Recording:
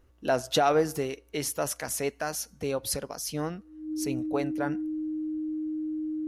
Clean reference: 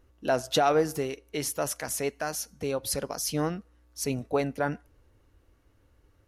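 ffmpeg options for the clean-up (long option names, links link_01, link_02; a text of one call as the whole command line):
ffmpeg -i in.wav -af "bandreject=frequency=310:width=30,asetnsamples=nb_out_samples=441:pad=0,asendcmd='2.97 volume volume 3.5dB',volume=0dB" out.wav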